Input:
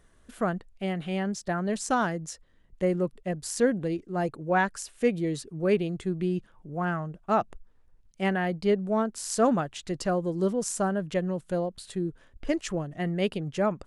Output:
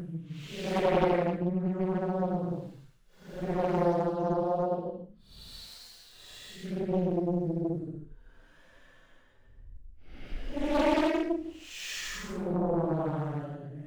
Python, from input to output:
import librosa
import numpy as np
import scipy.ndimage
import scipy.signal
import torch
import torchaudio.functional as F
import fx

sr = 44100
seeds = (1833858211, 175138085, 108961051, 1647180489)

y = scipy.signal.medfilt(x, 5)
y = fx.paulstretch(y, sr, seeds[0], factor=7.4, window_s=0.1, from_s=11.04)
y = fx.doppler_dist(y, sr, depth_ms=0.85)